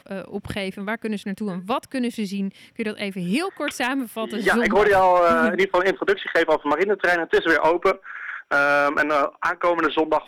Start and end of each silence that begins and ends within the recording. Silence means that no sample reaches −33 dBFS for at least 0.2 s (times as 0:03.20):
0:02.49–0:02.79